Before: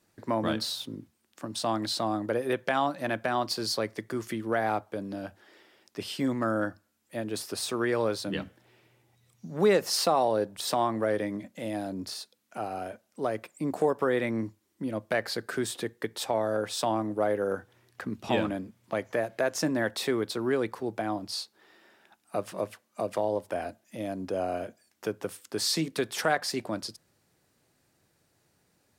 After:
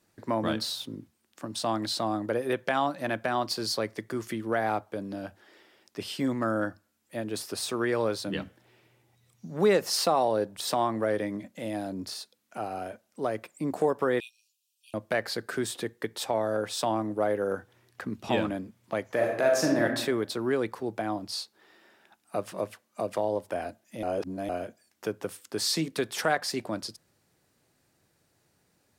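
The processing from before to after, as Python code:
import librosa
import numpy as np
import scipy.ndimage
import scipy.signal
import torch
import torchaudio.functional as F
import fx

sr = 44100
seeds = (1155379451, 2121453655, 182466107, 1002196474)

y = fx.brickwall_highpass(x, sr, low_hz=2400.0, at=(14.2, 14.94))
y = fx.reverb_throw(y, sr, start_s=19.11, length_s=0.73, rt60_s=0.84, drr_db=0.0)
y = fx.edit(y, sr, fx.reverse_span(start_s=24.03, length_s=0.46), tone=tone)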